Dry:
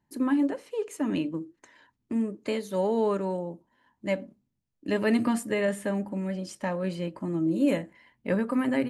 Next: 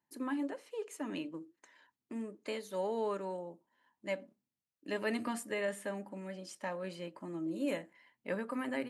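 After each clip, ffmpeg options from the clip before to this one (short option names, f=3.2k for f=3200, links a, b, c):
-af "highpass=f=490:p=1,volume=-6dB"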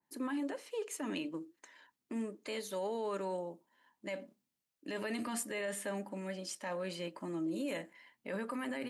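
-af "equalizer=f=99:t=o:w=0.82:g=-6,alimiter=level_in=9.5dB:limit=-24dB:level=0:latency=1:release=28,volume=-9.5dB,adynamicequalizer=threshold=0.00158:dfrequency=2100:dqfactor=0.7:tfrequency=2100:tqfactor=0.7:attack=5:release=100:ratio=0.375:range=2:mode=boostabove:tftype=highshelf,volume=3dB"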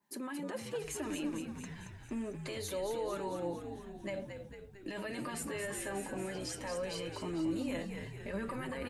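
-filter_complex "[0:a]alimiter=level_in=13dB:limit=-24dB:level=0:latency=1:release=43,volume=-13dB,flanger=delay=4.9:depth=3.2:regen=35:speed=0.24:shape=triangular,asplit=2[a][b];[b]asplit=8[c][d][e][f][g][h][i][j];[c]adelay=225,afreqshift=-67,volume=-7dB[k];[d]adelay=450,afreqshift=-134,volume=-11.2dB[l];[e]adelay=675,afreqshift=-201,volume=-15.3dB[m];[f]adelay=900,afreqshift=-268,volume=-19.5dB[n];[g]adelay=1125,afreqshift=-335,volume=-23.6dB[o];[h]adelay=1350,afreqshift=-402,volume=-27.8dB[p];[i]adelay=1575,afreqshift=-469,volume=-31.9dB[q];[j]adelay=1800,afreqshift=-536,volume=-36.1dB[r];[k][l][m][n][o][p][q][r]amix=inputs=8:normalize=0[s];[a][s]amix=inputs=2:normalize=0,volume=9dB"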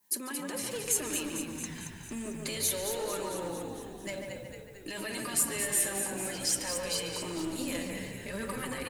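-filter_complex "[0:a]aeval=exprs='clip(val(0),-1,0.0211)':c=same,asplit=2[a][b];[b]adelay=144,lowpass=f=1.8k:p=1,volume=-3dB,asplit=2[c][d];[d]adelay=144,lowpass=f=1.8k:p=1,volume=0.51,asplit=2[e][f];[f]adelay=144,lowpass=f=1.8k:p=1,volume=0.51,asplit=2[g][h];[h]adelay=144,lowpass=f=1.8k:p=1,volume=0.51,asplit=2[i][j];[j]adelay=144,lowpass=f=1.8k:p=1,volume=0.51,asplit=2[k][l];[l]adelay=144,lowpass=f=1.8k:p=1,volume=0.51,asplit=2[m][n];[n]adelay=144,lowpass=f=1.8k:p=1,volume=0.51[o];[a][c][e][g][i][k][m][o]amix=inputs=8:normalize=0,crystalizer=i=5.5:c=0,volume=-1dB"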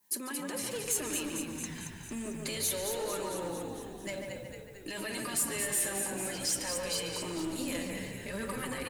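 -af "asoftclip=type=tanh:threshold=-23.5dB"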